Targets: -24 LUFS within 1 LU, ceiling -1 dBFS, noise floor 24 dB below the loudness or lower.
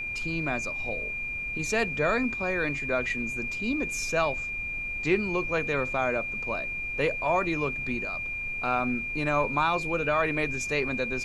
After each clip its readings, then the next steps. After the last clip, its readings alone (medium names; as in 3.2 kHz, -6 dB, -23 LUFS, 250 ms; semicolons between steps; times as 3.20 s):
steady tone 2.4 kHz; tone level -31 dBFS; noise floor -34 dBFS; noise floor target -52 dBFS; loudness -28.0 LUFS; peak level -12.0 dBFS; loudness target -24.0 LUFS
-> band-stop 2.4 kHz, Q 30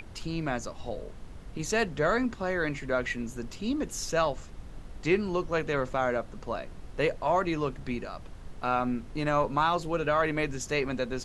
steady tone not found; noise floor -45 dBFS; noise floor target -54 dBFS
-> noise print and reduce 9 dB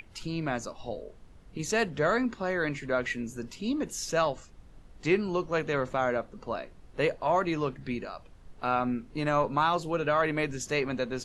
noise floor -53 dBFS; noise floor target -54 dBFS
-> noise print and reduce 6 dB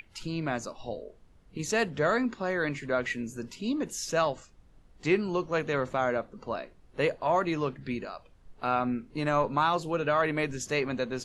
noise floor -58 dBFS; loudness -30.0 LUFS; peak level -13.5 dBFS; loudness target -24.0 LUFS
-> trim +6 dB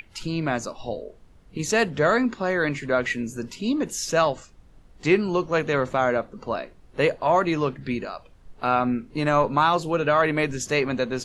loudness -24.0 LUFS; peak level -7.5 dBFS; noise floor -52 dBFS